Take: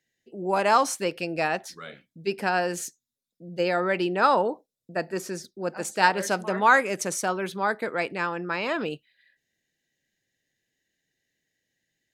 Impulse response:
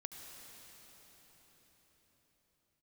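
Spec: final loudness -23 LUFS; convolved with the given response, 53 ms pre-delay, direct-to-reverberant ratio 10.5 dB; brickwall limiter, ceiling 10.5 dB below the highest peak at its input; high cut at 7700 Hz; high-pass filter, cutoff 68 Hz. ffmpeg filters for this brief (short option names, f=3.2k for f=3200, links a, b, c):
-filter_complex "[0:a]highpass=68,lowpass=7.7k,alimiter=limit=-15dB:level=0:latency=1,asplit=2[a][b];[1:a]atrim=start_sample=2205,adelay=53[c];[b][c]afir=irnorm=-1:irlink=0,volume=-7.5dB[d];[a][d]amix=inputs=2:normalize=0,volume=5.5dB"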